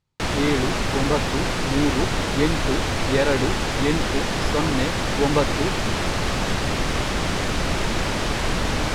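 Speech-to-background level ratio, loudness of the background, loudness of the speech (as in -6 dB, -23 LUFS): -2.0 dB, -24.0 LUFS, -26.0 LUFS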